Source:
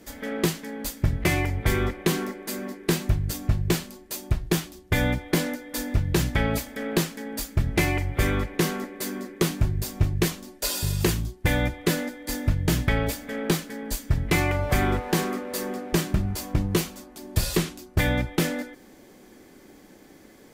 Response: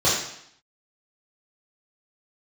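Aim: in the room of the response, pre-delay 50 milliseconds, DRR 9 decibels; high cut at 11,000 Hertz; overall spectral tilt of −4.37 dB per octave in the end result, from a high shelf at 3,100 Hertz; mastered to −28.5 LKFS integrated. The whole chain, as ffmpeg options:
-filter_complex "[0:a]lowpass=11000,highshelf=frequency=3100:gain=8,asplit=2[link_01][link_02];[1:a]atrim=start_sample=2205,adelay=50[link_03];[link_02][link_03]afir=irnorm=-1:irlink=0,volume=-26.5dB[link_04];[link_01][link_04]amix=inputs=2:normalize=0,volume=-4.5dB"

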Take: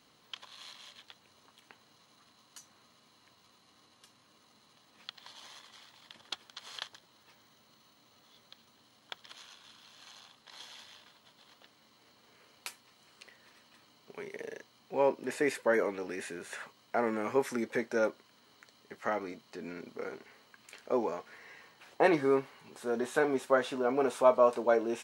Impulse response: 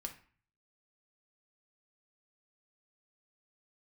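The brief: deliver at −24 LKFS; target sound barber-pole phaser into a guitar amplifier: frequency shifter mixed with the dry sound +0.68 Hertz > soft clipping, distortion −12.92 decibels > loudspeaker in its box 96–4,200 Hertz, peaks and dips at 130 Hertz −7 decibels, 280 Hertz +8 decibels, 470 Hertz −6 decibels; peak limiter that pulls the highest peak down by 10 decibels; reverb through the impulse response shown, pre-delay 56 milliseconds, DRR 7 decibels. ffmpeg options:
-filter_complex "[0:a]alimiter=limit=-20.5dB:level=0:latency=1,asplit=2[link_01][link_02];[1:a]atrim=start_sample=2205,adelay=56[link_03];[link_02][link_03]afir=irnorm=-1:irlink=0,volume=-4.5dB[link_04];[link_01][link_04]amix=inputs=2:normalize=0,asplit=2[link_05][link_06];[link_06]afreqshift=0.68[link_07];[link_05][link_07]amix=inputs=2:normalize=1,asoftclip=threshold=-29.5dB,highpass=96,equalizer=frequency=130:width_type=q:width=4:gain=-7,equalizer=frequency=280:width_type=q:width=4:gain=8,equalizer=frequency=470:width_type=q:width=4:gain=-6,lowpass=frequency=4200:width=0.5412,lowpass=frequency=4200:width=1.3066,volume=16dB"

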